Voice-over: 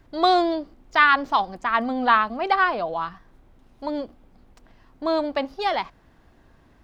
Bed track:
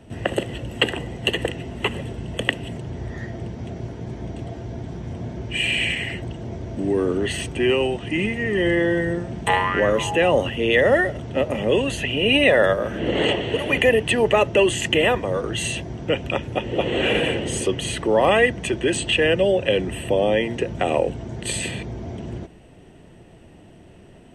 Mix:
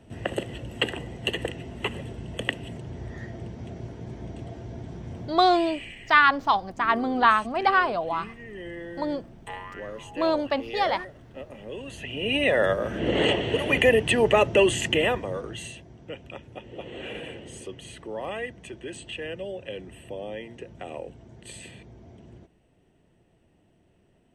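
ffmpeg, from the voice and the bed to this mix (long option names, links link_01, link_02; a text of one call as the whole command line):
ffmpeg -i stem1.wav -i stem2.wav -filter_complex "[0:a]adelay=5150,volume=-1dB[link_01];[1:a]volume=10.5dB,afade=type=out:start_time=5.2:duration=0.23:silence=0.237137,afade=type=in:start_time=11.76:duration=1.36:silence=0.149624,afade=type=out:start_time=14.65:duration=1.13:silence=0.188365[link_02];[link_01][link_02]amix=inputs=2:normalize=0" out.wav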